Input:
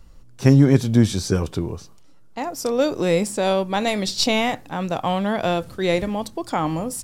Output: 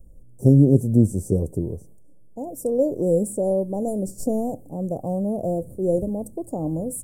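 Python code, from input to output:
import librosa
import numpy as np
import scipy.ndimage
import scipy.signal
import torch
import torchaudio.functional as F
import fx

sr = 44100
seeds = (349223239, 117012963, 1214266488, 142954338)

y = fx.overload_stage(x, sr, gain_db=16.0, at=(5.05, 5.64))
y = scipy.signal.sosfilt(scipy.signal.ellip(3, 1.0, 50, [580.0, 8700.0], 'bandstop', fs=sr, output='sos'), y)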